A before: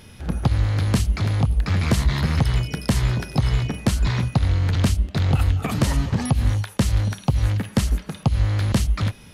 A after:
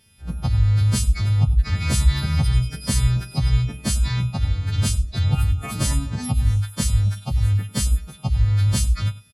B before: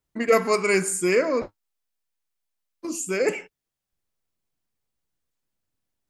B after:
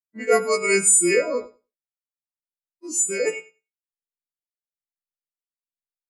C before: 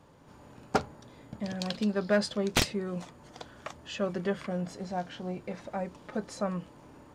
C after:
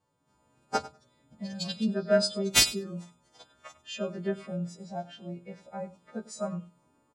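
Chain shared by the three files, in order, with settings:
every partial snapped to a pitch grid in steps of 2 semitones
repeating echo 98 ms, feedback 23%, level −12.5 dB
every bin expanded away from the loudest bin 1.5 to 1

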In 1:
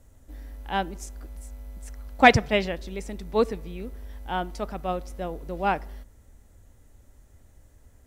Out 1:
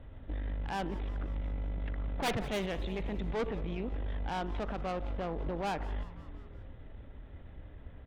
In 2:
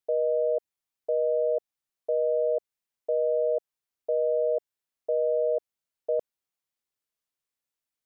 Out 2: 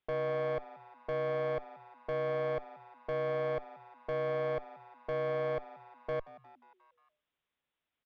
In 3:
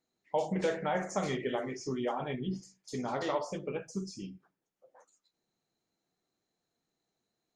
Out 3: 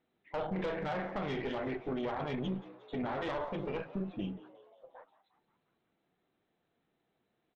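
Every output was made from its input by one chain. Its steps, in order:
wavefolder on the positive side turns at −13.5 dBFS
in parallel at +2.5 dB: downward compressor 6 to 1, threshold −35 dBFS
on the sum: downsampling to 8,000 Hz
tube saturation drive 26 dB, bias 0.8
brickwall limiter −31.5 dBFS
on a send: echo with shifted repeats 178 ms, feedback 58%, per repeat +120 Hz, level −18.5 dB
on the sum: level +4 dB

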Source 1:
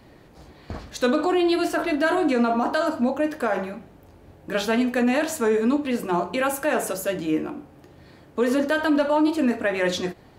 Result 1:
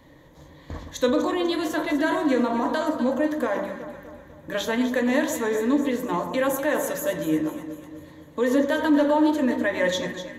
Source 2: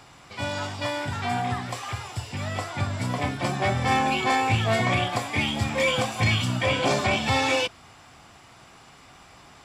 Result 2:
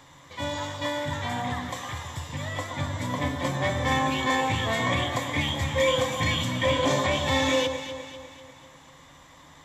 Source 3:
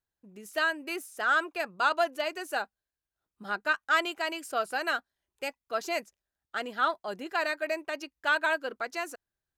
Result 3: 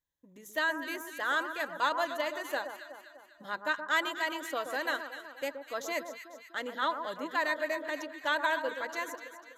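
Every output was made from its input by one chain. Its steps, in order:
EQ curve with evenly spaced ripples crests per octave 1.1, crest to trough 10 dB
delay that swaps between a low-pass and a high-pass 124 ms, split 1,400 Hz, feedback 70%, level −7.5 dB
level −3 dB

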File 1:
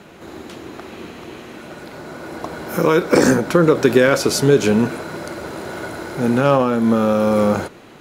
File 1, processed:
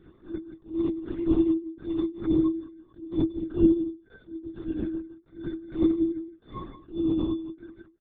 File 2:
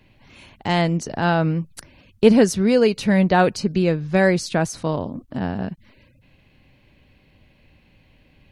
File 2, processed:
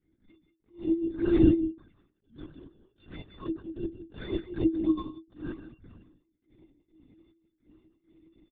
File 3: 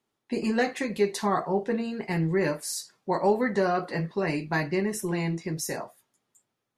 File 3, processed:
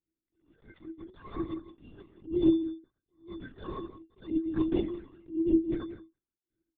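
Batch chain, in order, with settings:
noise gate −52 dBFS, range −8 dB
parametric band 310 Hz +11.5 dB 2.3 octaves
automatic gain control gain up to 13 dB
in parallel at −6 dB: decimation without filtering 15×
on the sum: phaser with its sweep stopped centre 2,500 Hz, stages 6
gate pattern "xxxx...xxx..x" 168 BPM −24 dB
stiff-string resonator 320 Hz, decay 0.23 s, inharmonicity 0.03
hollow resonant body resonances 340/560/2,600 Hz, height 9 dB, ringing for 65 ms
flanger swept by the level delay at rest 2.4 ms, full sweep at −19 dBFS
on a send: single-tap delay 170 ms −11.5 dB
on the sum: linear-prediction vocoder at 8 kHz whisper
level that may rise only so fast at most 190 dB per second
level −3 dB

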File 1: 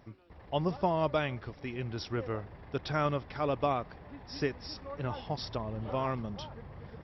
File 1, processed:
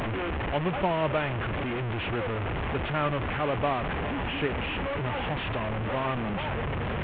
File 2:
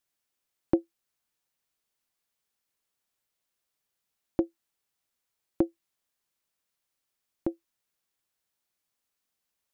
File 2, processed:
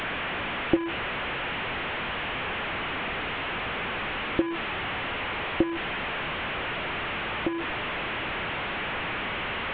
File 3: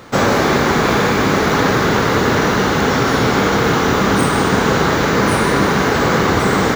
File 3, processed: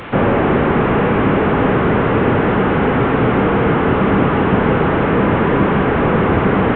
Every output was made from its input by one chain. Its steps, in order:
linear delta modulator 16 kbit/s, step −26 dBFS
level +2 dB

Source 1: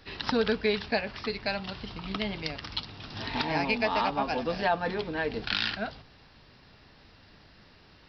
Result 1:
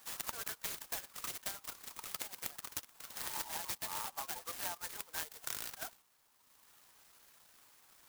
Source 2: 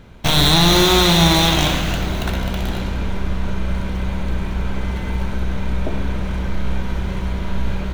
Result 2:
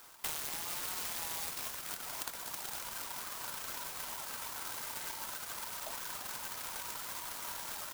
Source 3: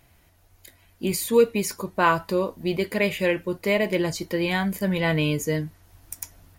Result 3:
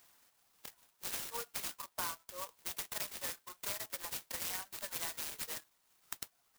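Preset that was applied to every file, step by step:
high-pass filter 950 Hz 24 dB per octave
reverb reduction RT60 1.5 s
downward compressor 8 to 1, threshold −37 dBFS
converter with an unsteady clock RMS 0.14 ms

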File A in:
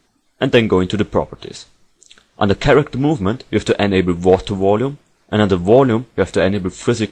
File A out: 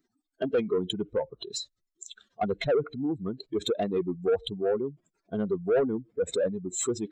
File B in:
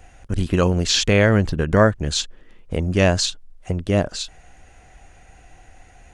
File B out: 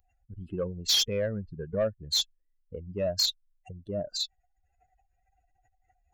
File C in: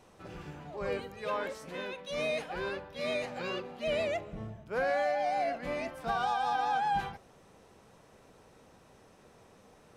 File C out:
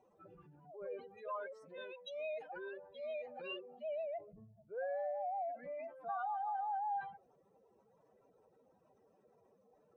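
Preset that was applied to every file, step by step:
expanding power law on the bin magnitudes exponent 2.5
RIAA equalisation recording
soft clipping −11.5 dBFS
level −7 dB

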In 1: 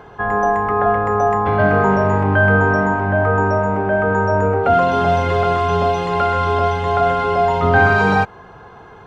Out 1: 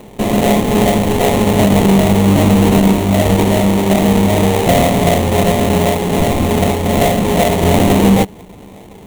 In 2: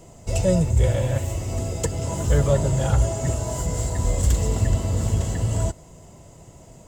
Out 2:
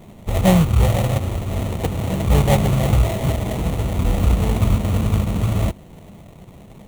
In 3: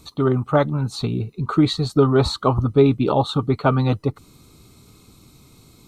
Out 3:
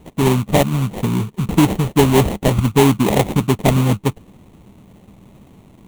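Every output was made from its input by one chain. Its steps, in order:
sample-rate reduction 1,300 Hz, jitter 20%
thirty-one-band graphic EQ 200 Hz +9 dB, 1,600 Hz −11 dB, 5,000 Hz −11 dB
boost into a limiter +4 dB
level −1 dB

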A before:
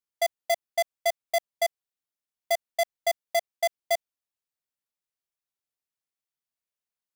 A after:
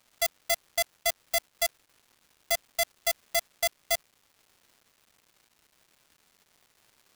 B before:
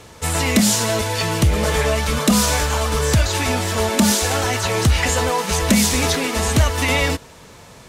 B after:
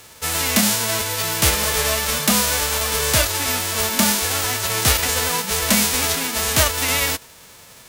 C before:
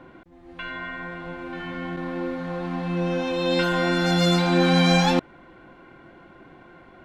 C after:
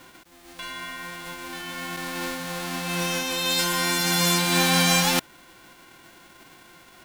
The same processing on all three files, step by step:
spectral envelope flattened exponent 0.3
surface crackle 550 per second −48 dBFS
level −2 dB

